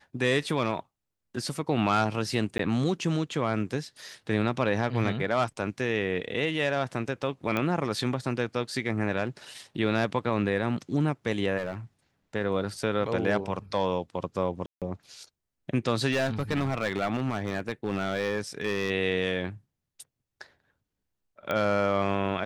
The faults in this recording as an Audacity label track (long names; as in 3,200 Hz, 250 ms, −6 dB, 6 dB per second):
2.580000	2.590000	drop-out 13 ms
7.570000	7.570000	click −15 dBFS
11.570000	11.750000	clipping −27.5 dBFS
14.660000	14.820000	drop-out 157 ms
16.110000	18.910000	clipping −22.5 dBFS
21.510000	21.510000	click −16 dBFS